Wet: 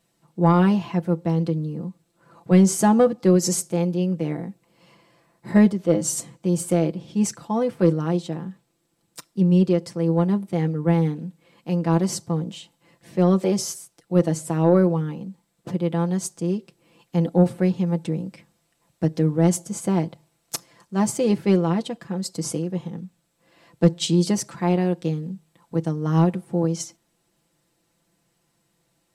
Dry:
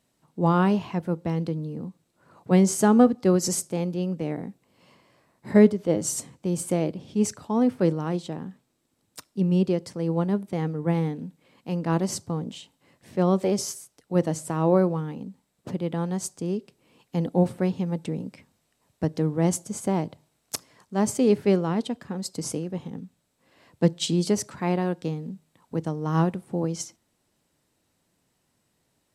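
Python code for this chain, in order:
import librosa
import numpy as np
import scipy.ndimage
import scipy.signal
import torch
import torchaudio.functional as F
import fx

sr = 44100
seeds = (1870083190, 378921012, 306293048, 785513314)

y = x + 0.67 * np.pad(x, (int(5.9 * sr / 1000.0), 0))[:len(x)]
y = 10.0 ** (-4.5 / 20.0) * np.tanh(y / 10.0 ** (-4.5 / 20.0))
y = y * 10.0 ** (1.0 / 20.0)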